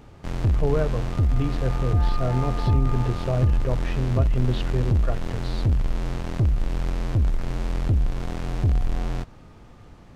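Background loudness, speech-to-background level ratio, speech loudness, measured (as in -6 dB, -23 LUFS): -26.0 LUFS, -2.0 dB, -28.0 LUFS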